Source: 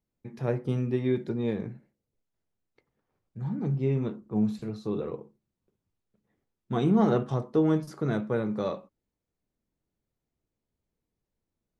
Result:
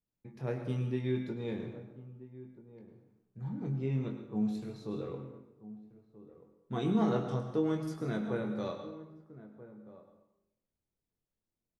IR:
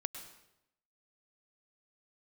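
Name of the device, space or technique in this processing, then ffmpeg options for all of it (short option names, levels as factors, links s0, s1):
bathroom: -filter_complex "[1:a]atrim=start_sample=2205[s0];[0:a][s0]afir=irnorm=-1:irlink=0,asplit=2[s1][s2];[s2]adelay=23,volume=0.447[s3];[s1][s3]amix=inputs=2:normalize=0,asplit=2[s4][s5];[s5]adelay=1283,volume=0.158,highshelf=f=4000:g=-28.9[s6];[s4][s6]amix=inputs=2:normalize=0,adynamicequalizer=threshold=0.00794:dfrequency=1700:dqfactor=0.7:tfrequency=1700:tqfactor=0.7:attack=5:release=100:ratio=0.375:range=2:mode=boostabove:tftype=highshelf,volume=0.447"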